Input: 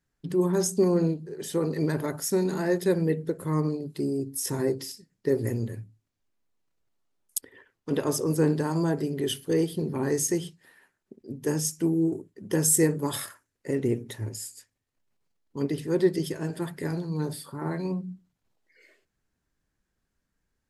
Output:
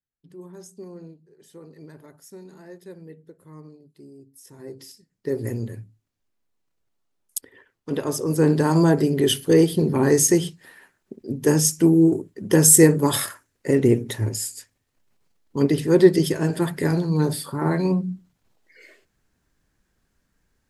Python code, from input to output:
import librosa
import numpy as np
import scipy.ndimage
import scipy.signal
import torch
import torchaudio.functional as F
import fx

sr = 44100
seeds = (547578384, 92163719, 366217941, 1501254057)

y = fx.gain(x, sr, db=fx.line((4.55, -17.5), (4.8, -7.0), (5.51, 1.0), (8.19, 1.0), (8.7, 9.0)))